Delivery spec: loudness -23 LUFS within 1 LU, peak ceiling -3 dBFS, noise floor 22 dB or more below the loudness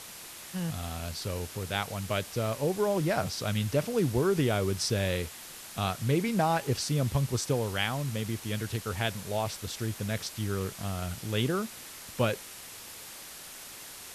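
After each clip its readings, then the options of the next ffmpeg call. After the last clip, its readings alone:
noise floor -46 dBFS; noise floor target -53 dBFS; loudness -31.0 LUFS; peak level -14.0 dBFS; loudness target -23.0 LUFS
-> -af "afftdn=nr=7:nf=-46"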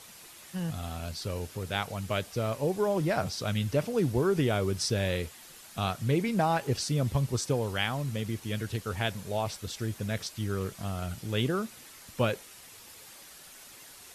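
noise floor -51 dBFS; noise floor target -53 dBFS
-> -af "afftdn=nr=6:nf=-51"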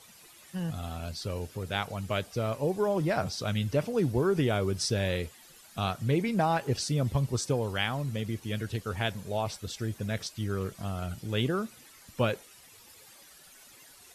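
noise floor -55 dBFS; loudness -31.0 LUFS; peak level -13.5 dBFS; loudness target -23.0 LUFS
-> -af "volume=2.51"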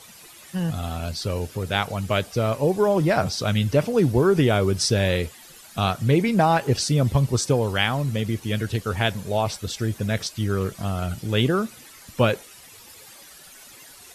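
loudness -23.0 LUFS; peak level -5.5 dBFS; noise floor -47 dBFS

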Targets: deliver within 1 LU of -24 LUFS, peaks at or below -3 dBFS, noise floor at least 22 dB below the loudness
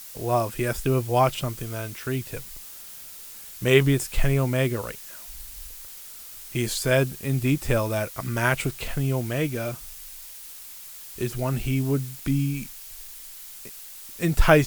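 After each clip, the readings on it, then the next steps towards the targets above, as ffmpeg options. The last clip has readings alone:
noise floor -42 dBFS; noise floor target -48 dBFS; loudness -25.5 LUFS; peak level -3.5 dBFS; loudness target -24.0 LUFS
-> -af "afftdn=nr=6:nf=-42"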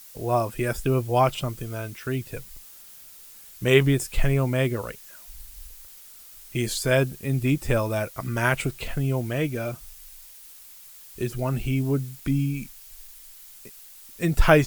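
noise floor -47 dBFS; noise floor target -48 dBFS
-> -af "afftdn=nr=6:nf=-47"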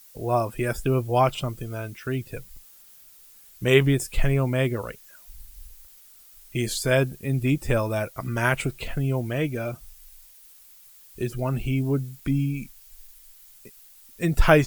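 noise floor -51 dBFS; loudness -25.5 LUFS; peak level -3.5 dBFS; loudness target -24.0 LUFS
-> -af "volume=1.19,alimiter=limit=0.708:level=0:latency=1"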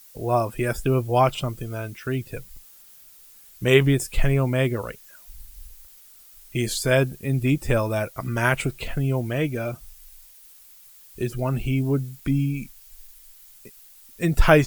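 loudness -24.0 LUFS; peak level -3.0 dBFS; noise floor -50 dBFS

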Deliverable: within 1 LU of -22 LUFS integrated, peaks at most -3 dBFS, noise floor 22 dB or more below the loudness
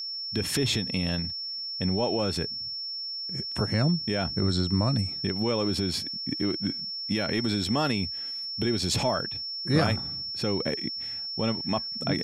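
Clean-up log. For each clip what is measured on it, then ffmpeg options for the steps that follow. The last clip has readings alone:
steady tone 5.4 kHz; tone level -32 dBFS; loudness -27.5 LUFS; peak level -10.5 dBFS; loudness target -22.0 LUFS
-> -af "bandreject=f=5400:w=30"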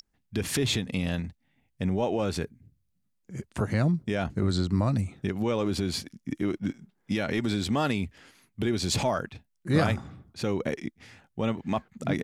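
steady tone not found; loudness -29.0 LUFS; peak level -11.0 dBFS; loudness target -22.0 LUFS
-> -af "volume=2.24"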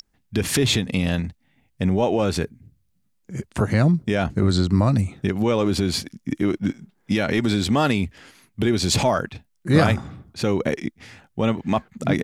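loudness -22.0 LUFS; peak level -4.0 dBFS; noise floor -67 dBFS

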